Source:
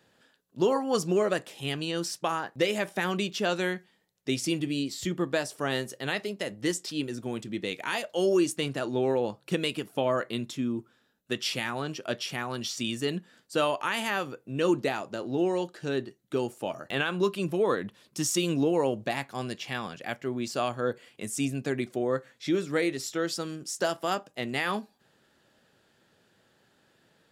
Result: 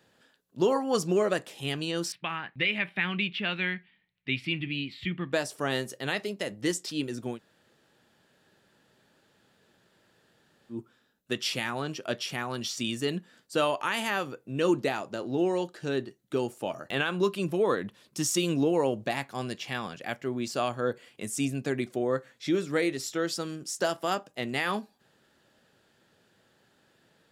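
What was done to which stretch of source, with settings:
2.12–5.33 s: FFT filter 180 Hz 0 dB, 490 Hz -13 dB, 1.5 kHz -2 dB, 2.3 kHz +9 dB, 4 kHz -4 dB, 6.4 kHz -29 dB, 11 kHz -23 dB
7.35–10.74 s: room tone, crossfade 0.10 s

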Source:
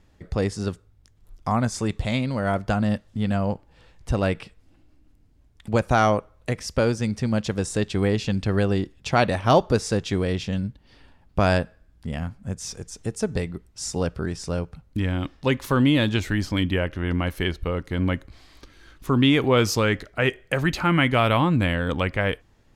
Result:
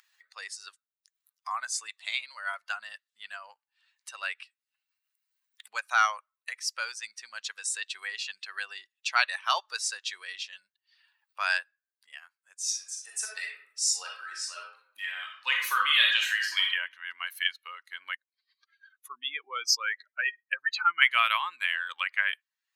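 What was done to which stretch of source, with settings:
12.63–16.66 s: reverb throw, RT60 0.91 s, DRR -2.5 dB
18.15–21.02 s: spectral contrast enhancement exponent 1.7
whole clip: expander on every frequency bin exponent 1.5; upward compressor, threshold -39 dBFS; high-pass 1.3 kHz 24 dB/octave; trim +5.5 dB

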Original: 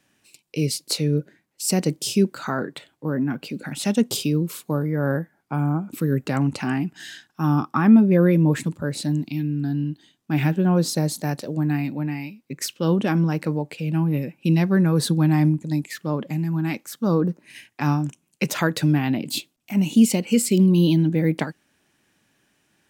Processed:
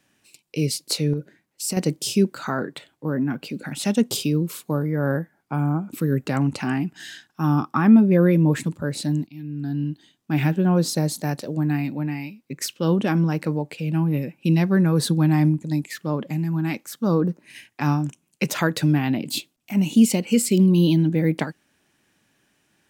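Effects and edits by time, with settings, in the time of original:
1.13–1.77 s: compression, threshold -22 dBFS
9.27–9.85 s: fade in, from -20 dB

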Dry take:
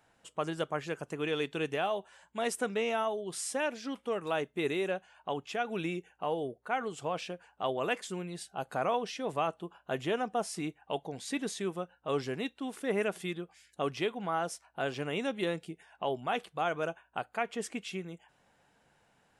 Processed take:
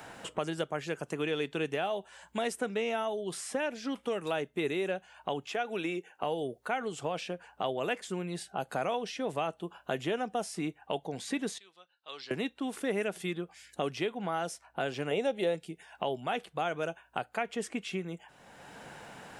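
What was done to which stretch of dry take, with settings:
5.50–6.23 s: high-pass 280 Hz
11.58–12.31 s: band-pass filter 4.2 kHz, Q 4.9
15.11–15.55 s: high-order bell 590 Hz +9 dB 1.2 oct
whole clip: dynamic bell 1.1 kHz, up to -5 dB, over -48 dBFS, Q 3.3; three bands compressed up and down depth 70%

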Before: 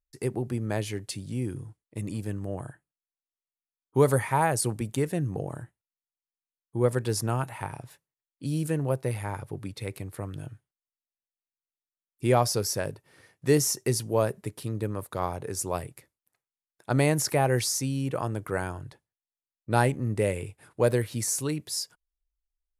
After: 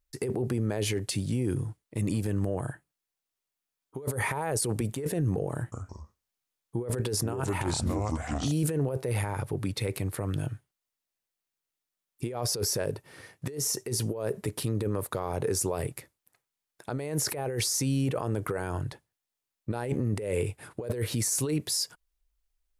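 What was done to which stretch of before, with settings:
5.55–8.52 s: ever faster or slower copies 169 ms, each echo -4 st, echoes 2, each echo -6 dB
whole clip: dynamic bell 440 Hz, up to +8 dB, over -40 dBFS, Q 2.3; compressor with a negative ratio -30 dBFS, ratio -1; peak limiter -22.5 dBFS; trim +3 dB

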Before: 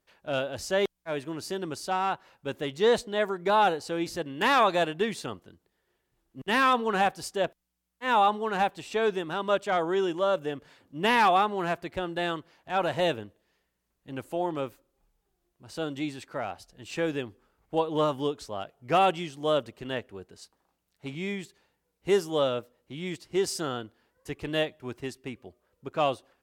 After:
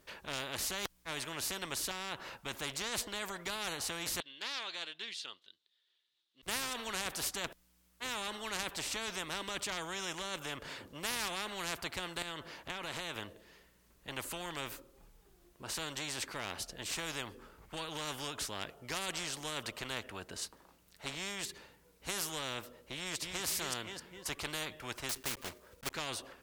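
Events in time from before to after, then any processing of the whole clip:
1.91–2.54 s: compression 3:1, threshold -30 dBFS
4.20–6.43 s: band-pass filter 3.7 kHz, Q 6.1
12.22–13.16 s: compression, threshold -36 dBFS
22.96–23.47 s: echo throw 260 ms, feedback 30%, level -8 dB
25.09–25.91 s: block-companded coder 3-bit
whole clip: peaking EQ 760 Hz -6.5 dB 0.21 oct; peak limiter -19.5 dBFS; spectrum-flattening compressor 4:1; trim +1 dB

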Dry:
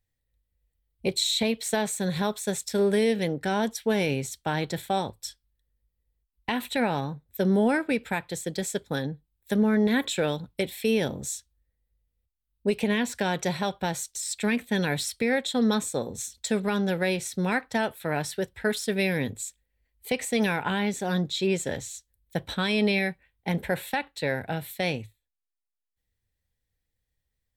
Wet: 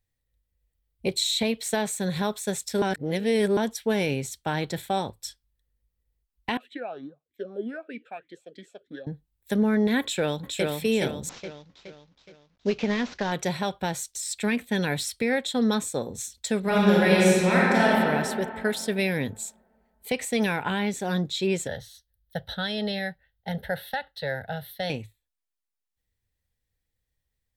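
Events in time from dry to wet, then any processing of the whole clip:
2.82–3.57 s: reverse
6.57–9.07 s: talking filter a-i 3.2 Hz
10.01–10.68 s: echo throw 420 ms, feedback 45%, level -3 dB
11.29–13.32 s: CVSD coder 32 kbps
16.60–17.91 s: reverb throw, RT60 2.4 s, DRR -7 dB
21.67–24.90 s: static phaser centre 1.6 kHz, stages 8

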